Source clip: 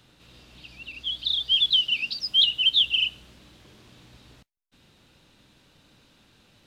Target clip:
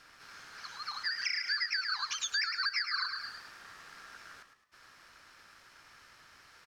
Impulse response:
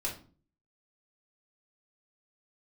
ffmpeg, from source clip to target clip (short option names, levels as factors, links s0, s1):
-filter_complex "[0:a]asplit=5[s0][s1][s2][s3][s4];[s1]adelay=107,afreqshift=64,volume=0.355[s5];[s2]adelay=214,afreqshift=128,volume=0.135[s6];[s3]adelay=321,afreqshift=192,volume=0.0513[s7];[s4]adelay=428,afreqshift=256,volume=0.0195[s8];[s0][s5][s6][s7][s8]amix=inputs=5:normalize=0,acrossover=split=260[s9][s10];[s10]acompressor=threshold=0.0251:ratio=5[s11];[s9][s11]amix=inputs=2:normalize=0,aeval=exprs='val(0)*sin(2*PI*1500*n/s)':c=same,volume=1.41"